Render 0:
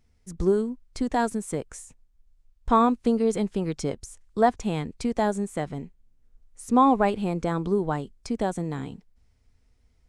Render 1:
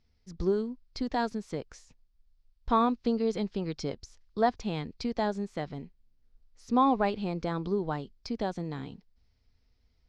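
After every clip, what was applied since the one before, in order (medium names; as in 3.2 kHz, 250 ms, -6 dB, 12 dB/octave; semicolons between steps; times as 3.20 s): resonant high shelf 6.7 kHz -13 dB, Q 3; trim -5.5 dB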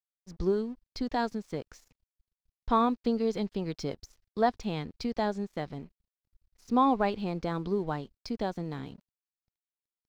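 crossover distortion -58 dBFS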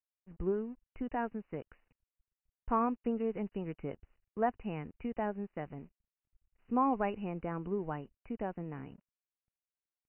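brick-wall FIR low-pass 3 kHz; trim -5.5 dB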